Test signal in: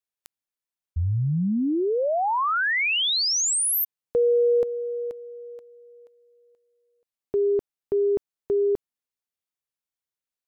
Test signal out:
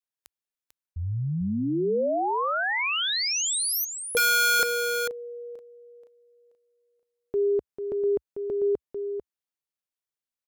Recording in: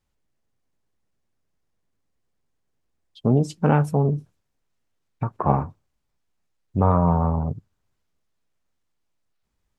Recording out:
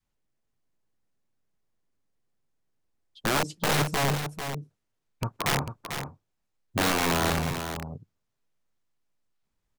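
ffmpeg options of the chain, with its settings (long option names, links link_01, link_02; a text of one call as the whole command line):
ffmpeg -i in.wav -af "adynamicequalizer=threshold=0.0355:dfrequency=470:dqfactor=1.4:tfrequency=470:tqfactor=1.4:attack=5:release=100:ratio=0.375:range=1.5:mode=boostabove:tftype=bell,aeval=exprs='(mod(5.31*val(0)+1,2)-1)/5.31':channel_layout=same,equalizer=frequency=67:width_type=o:width=0.52:gain=-7.5,aecho=1:1:445:0.398,volume=-4dB" out.wav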